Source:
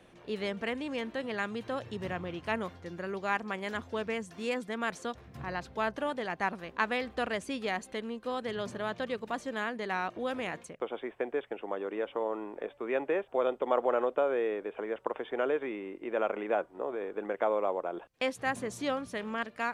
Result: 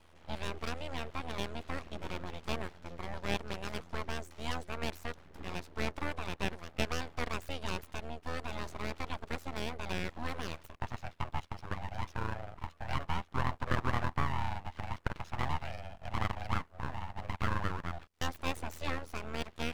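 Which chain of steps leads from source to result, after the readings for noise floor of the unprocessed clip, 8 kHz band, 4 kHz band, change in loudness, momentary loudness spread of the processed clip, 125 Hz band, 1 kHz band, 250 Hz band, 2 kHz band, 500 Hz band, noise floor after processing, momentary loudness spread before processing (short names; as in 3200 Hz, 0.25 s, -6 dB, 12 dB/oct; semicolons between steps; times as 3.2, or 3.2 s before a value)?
-56 dBFS, +0.5 dB, +0.5 dB, -5.0 dB, 8 LU, +10.0 dB, -3.5 dB, -5.0 dB, -4.5 dB, -11.5 dB, -59 dBFS, 9 LU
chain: ring modulator 41 Hz; full-wave rectifier; gain +1 dB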